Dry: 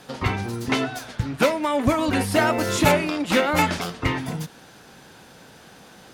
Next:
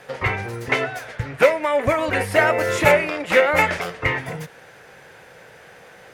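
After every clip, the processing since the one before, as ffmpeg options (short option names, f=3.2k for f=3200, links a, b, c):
-af "equalizer=f=125:t=o:w=1:g=4,equalizer=f=250:t=o:w=1:g=-9,equalizer=f=500:t=o:w=1:g=11,equalizer=f=2k:t=o:w=1:g=12,equalizer=f=4k:t=o:w=1:g=-4,volume=-3.5dB"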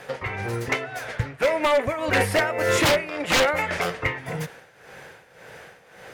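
-af "tremolo=f=1.8:d=0.75,aeval=exprs='0.158*(abs(mod(val(0)/0.158+3,4)-2)-1)':c=same,volume=3dB"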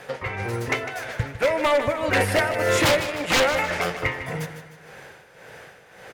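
-af "aecho=1:1:153|306|459|612|765:0.282|0.127|0.0571|0.0257|0.0116"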